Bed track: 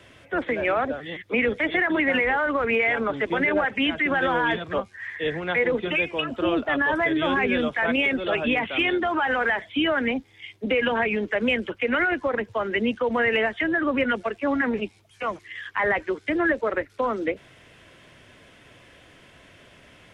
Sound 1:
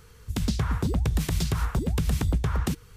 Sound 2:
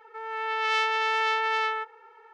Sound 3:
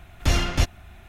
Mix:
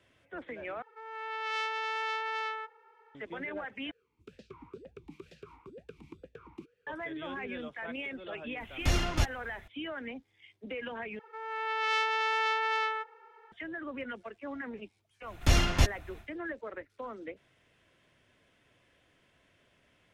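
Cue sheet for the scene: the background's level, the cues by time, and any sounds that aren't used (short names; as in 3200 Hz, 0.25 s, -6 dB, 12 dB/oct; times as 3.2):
bed track -16.5 dB
0.82 replace with 2 -8.5 dB
3.91 replace with 1 -6.5 dB + vowel sweep e-u 2.1 Hz
8.6 add 3 -7 dB
11.19 replace with 2 -4 dB
15.21 add 3 -3 dB, fades 0.10 s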